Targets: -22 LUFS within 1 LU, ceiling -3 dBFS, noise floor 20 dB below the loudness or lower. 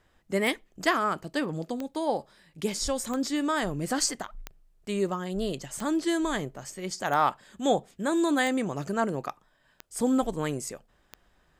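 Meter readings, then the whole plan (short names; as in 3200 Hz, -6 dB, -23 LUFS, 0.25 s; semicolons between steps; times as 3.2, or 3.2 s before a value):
clicks 9; loudness -29.0 LUFS; peak -7.5 dBFS; loudness target -22.0 LUFS
-> de-click; gain +7 dB; limiter -3 dBFS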